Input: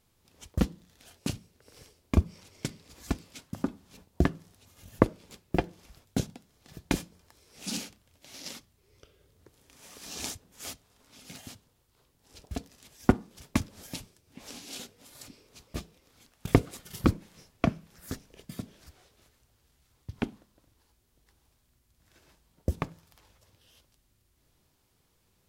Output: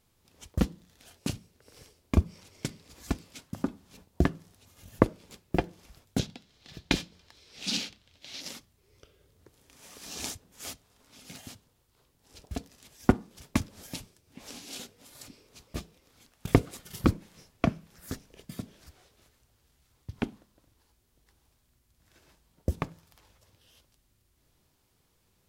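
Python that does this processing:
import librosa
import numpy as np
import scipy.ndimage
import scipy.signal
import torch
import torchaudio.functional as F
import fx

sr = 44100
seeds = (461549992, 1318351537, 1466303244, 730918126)

y = fx.curve_eq(x, sr, hz=(1100.0, 3900.0, 10000.0), db=(0, 10, -7), at=(6.19, 8.41))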